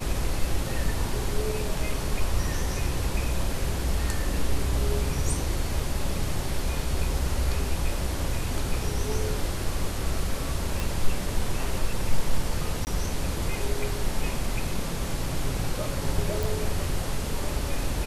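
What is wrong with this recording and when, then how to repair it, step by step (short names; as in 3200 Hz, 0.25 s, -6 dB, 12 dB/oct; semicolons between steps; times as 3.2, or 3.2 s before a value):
10.8 pop
12.85–12.87 gap 19 ms
16.43 pop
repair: de-click; interpolate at 12.85, 19 ms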